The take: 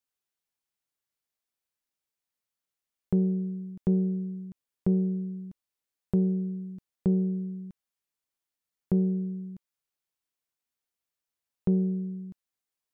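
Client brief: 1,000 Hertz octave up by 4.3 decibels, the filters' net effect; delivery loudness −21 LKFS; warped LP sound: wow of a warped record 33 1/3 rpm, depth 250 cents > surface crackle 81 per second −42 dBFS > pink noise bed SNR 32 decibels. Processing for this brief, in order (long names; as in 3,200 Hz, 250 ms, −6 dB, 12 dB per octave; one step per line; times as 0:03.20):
parametric band 1,000 Hz +6 dB
wow of a warped record 33 1/3 rpm, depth 250 cents
surface crackle 81 per second −42 dBFS
pink noise bed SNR 32 dB
level +8.5 dB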